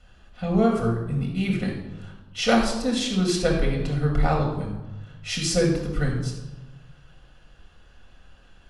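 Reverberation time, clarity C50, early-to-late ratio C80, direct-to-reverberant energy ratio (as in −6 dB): 1.1 s, 4.0 dB, 7.0 dB, −1.0 dB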